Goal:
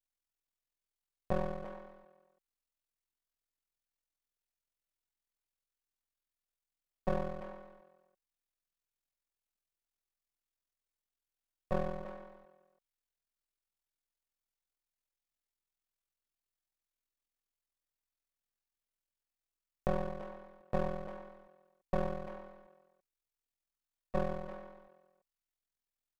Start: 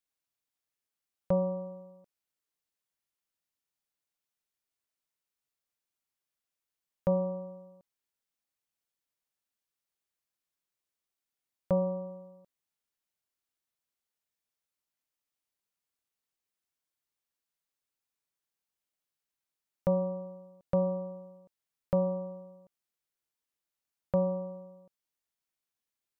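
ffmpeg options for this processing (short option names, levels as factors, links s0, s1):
-filter_complex "[0:a]aeval=exprs='val(0)*sin(2*PI*21*n/s)':c=same,aeval=exprs='max(val(0),0)':c=same,asplit=2[s0][s1];[s1]adelay=340,highpass=300,lowpass=3400,asoftclip=type=hard:threshold=0.0447,volume=0.316[s2];[s0][s2]amix=inputs=2:normalize=0,volume=1.12"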